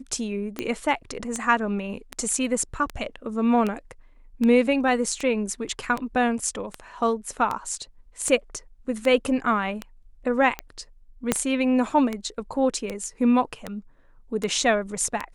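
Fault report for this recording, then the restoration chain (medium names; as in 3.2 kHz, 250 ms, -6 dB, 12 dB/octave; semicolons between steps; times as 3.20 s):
tick 78 rpm -14 dBFS
11.32 s: pop -5 dBFS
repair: de-click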